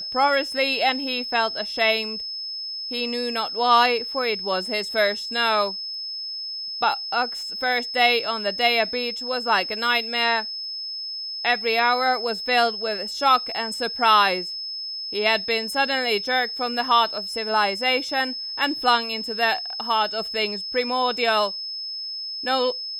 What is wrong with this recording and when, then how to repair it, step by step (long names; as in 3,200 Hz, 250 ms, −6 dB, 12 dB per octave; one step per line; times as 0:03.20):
whistle 5,200 Hz −29 dBFS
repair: notch filter 5,200 Hz, Q 30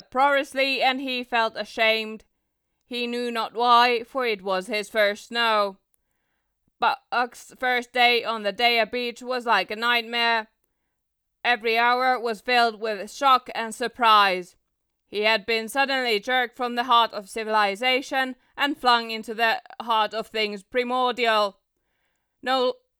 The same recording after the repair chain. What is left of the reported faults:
none of them is left